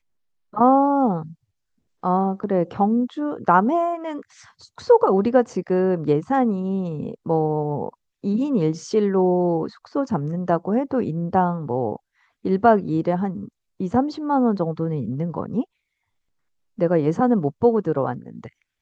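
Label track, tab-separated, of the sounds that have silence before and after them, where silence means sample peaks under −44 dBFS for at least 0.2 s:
0.530000	1.330000	sound
2.030000	7.940000	sound
8.240000	11.970000	sound
12.450000	13.490000	sound
13.800000	15.640000	sound
16.780000	18.490000	sound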